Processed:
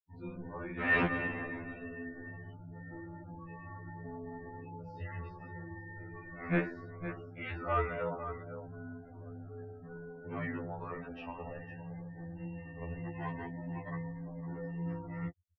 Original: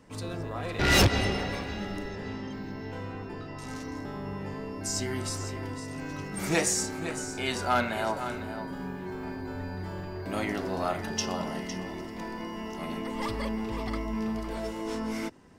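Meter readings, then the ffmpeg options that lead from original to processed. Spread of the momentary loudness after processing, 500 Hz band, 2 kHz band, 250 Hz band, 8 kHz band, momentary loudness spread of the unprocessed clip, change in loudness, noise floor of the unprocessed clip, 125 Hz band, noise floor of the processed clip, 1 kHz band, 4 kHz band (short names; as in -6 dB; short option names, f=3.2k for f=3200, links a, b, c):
14 LU, -8.0 dB, -4.5 dB, -8.0 dB, under -40 dB, 11 LU, -8.0 dB, -40 dBFS, -6.0 dB, -50 dBFS, -8.0 dB, -23.0 dB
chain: -af "afftfilt=real='re*gte(hypot(re,im),0.0158)':imag='im*gte(hypot(re,im),0.0158)':win_size=1024:overlap=0.75,highpass=f=220:t=q:w=0.5412,highpass=f=220:t=q:w=1.307,lowpass=f=2.7k:t=q:w=0.5176,lowpass=f=2.7k:t=q:w=0.7071,lowpass=f=2.7k:t=q:w=1.932,afreqshift=-160,afftfilt=real='re*2*eq(mod(b,4),0)':imag='im*2*eq(mod(b,4),0)':win_size=2048:overlap=0.75,volume=-3dB"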